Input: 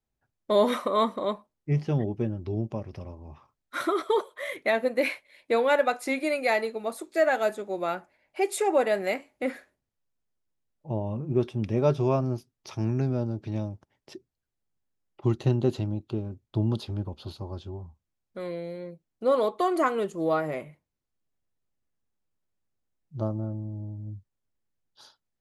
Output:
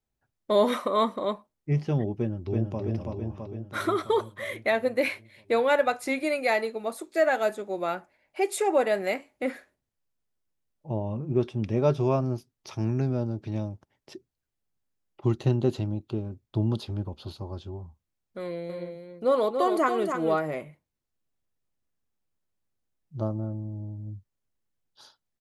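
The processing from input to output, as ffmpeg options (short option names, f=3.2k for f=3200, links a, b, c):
-filter_complex "[0:a]asplit=2[a][b];[b]afade=t=in:st=2.15:d=0.01,afade=t=out:st=2.8:d=0.01,aecho=0:1:330|660|990|1320|1650|1980|2310|2640|2970|3300|3630:0.749894|0.487431|0.31683|0.20594|0.133861|0.0870095|0.0565562|0.0367615|0.023895|0.0155317|0.0100956[c];[a][c]amix=inputs=2:normalize=0,asettb=1/sr,asplit=3[d][e][f];[d]atrim=end=10.984[g];[e]atrim=start=10.98:end=11.94,asetpts=PTS-STARTPTS,afade=t=in:d=0.004:c=qsin,afade=t=out:st=0.956:d=0.004:c=qsin,lowpass=9.8k[h];[f]atrim=start=11.936[i];[g][h]acrossfade=d=0.004:c1=hsin:c2=qsin[j];[j][i]acrossfade=d=0.004:c1=qsin:c2=hsin,asettb=1/sr,asplit=3[k][l][m];[k]atrim=end=18.414[n];[l]atrim=start=18.41:end=20.39,asetpts=PTS-STARTPTS,afade=t=in:d=0.004:c=qsin,afade=t=out:st=1.976:d=0.004:c=qsin,aecho=1:1:283:0.473,atrim=end_sample=87318[o];[m]atrim=start=20.386[p];[n][o]acrossfade=d=0.004:c1=hsin:c2=qsin[q];[q][p]acrossfade=d=0.004:c1=qsin:c2=hsin"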